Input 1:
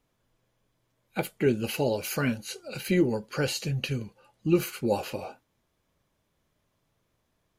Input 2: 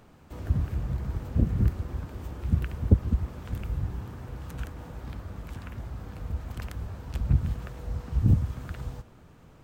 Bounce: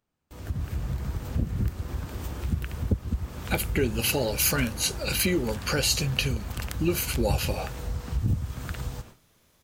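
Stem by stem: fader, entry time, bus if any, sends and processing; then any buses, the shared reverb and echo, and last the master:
-5.5 dB, 2.35 s, no send, compression 2:1, threshold -37 dBFS, peak gain reduction 11 dB
-8.0 dB, 0.00 s, no send, gate with hold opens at -39 dBFS; compression 2:1, threshold -33 dBFS, peak gain reduction 11.5 dB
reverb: none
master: treble shelf 2.4 kHz +10 dB; level rider gain up to 12 dB

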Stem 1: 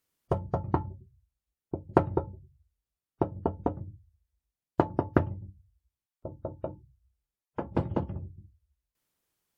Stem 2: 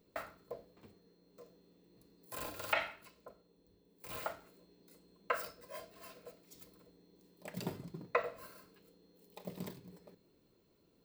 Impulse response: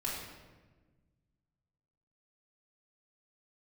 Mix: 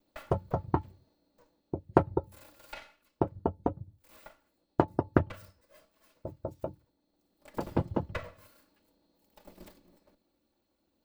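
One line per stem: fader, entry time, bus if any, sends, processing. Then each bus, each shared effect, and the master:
-0.5 dB, 0.00 s, no send, reverb removal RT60 1.4 s; gate with hold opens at -52 dBFS
1.12 s -2 dB -> 1.87 s -10.5 dB -> 6.98 s -10.5 dB -> 7.59 s -4 dB, 0.00 s, no send, comb filter that takes the minimum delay 3.5 ms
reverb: none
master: none

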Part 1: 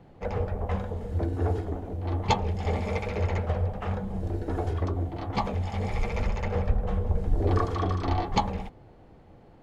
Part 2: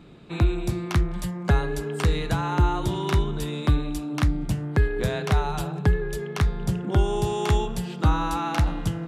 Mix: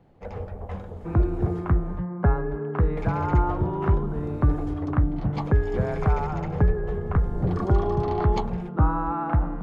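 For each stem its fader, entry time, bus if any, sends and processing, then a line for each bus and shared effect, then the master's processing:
-5.0 dB, 0.00 s, muted 1.99–2.97 s, no send, treble shelf 3.7 kHz -12 dB
0.0 dB, 0.75 s, no send, low-pass 1.4 kHz 24 dB/octave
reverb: none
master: treble shelf 4.9 kHz +11 dB

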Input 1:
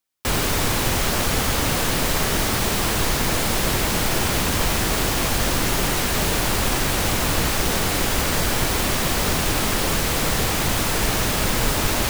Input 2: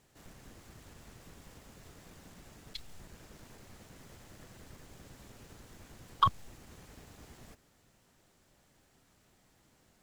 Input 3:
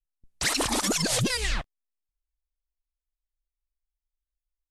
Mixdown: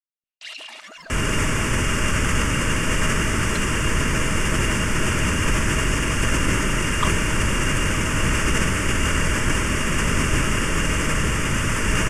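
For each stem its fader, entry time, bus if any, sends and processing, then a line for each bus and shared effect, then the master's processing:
+1.0 dB, 0.85 s, no send, echo send -6.5 dB, low-pass 8.8 kHz 24 dB/octave; static phaser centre 1.7 kHz, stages 4
2.23 s -12 dB -> 2.59 s -0.5 dB, 0.80 s, no send, no echo send, comb 4.1 ms, depth 79%
-5.5 dB, 0.00 s, no send, no echo send, LFO band-pass sine 0.5 Hz 790–2900 Hz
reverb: none
echo: delay 144 ms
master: small resonant body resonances 640/2800 Hz, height 14 dB, ringing for 65 ms; decay stretcher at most 25 dB/s

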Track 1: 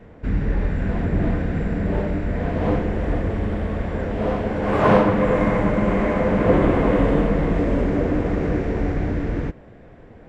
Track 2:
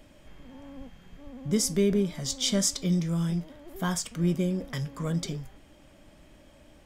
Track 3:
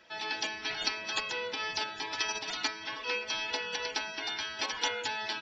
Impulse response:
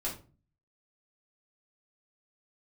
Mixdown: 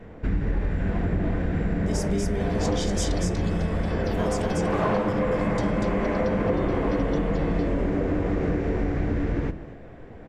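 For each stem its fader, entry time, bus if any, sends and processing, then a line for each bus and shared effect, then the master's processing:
0.0 dB, 0.00 s, send -14 dB, echo send -18 dB, none
-1.5 dB, 0.35 s, no send, echo send -4 dB, low-pass 10 kHz 12 dB/octave
-9.5 dB, 2.30 s, no send, no echo send, none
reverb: on, RT60 0.35 s, pre-delay 3 ms
echo: delay 240 ms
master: compression 5:1, threshold -21 dBFS, peak gain reduction 11 dB

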